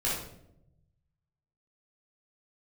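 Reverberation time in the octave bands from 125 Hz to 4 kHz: 1.7 s, 1.2 s, 0.95 s, 0.65 s, 0.55 s, 0.50 s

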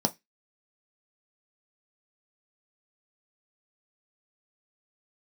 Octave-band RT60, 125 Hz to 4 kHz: 0.20 s, 0.20 s, 0.15 s, 0.15 s, 0.20 s, 0.25 s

